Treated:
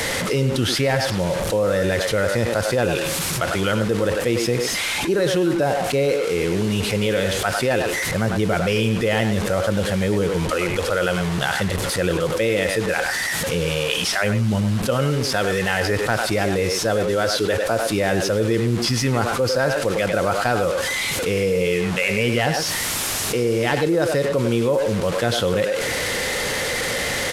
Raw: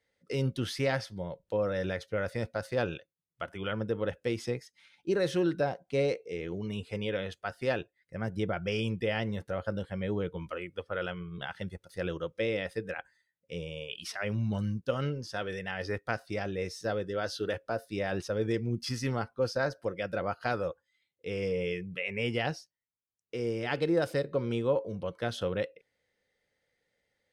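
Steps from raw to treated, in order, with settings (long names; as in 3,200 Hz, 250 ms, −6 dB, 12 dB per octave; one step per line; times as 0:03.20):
linear delta modulator 64 kbit/s, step −40 dBFS
far-end echo of a speakerphone 100 ms, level −7 dB
envelope flattener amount 70%
level +6 dB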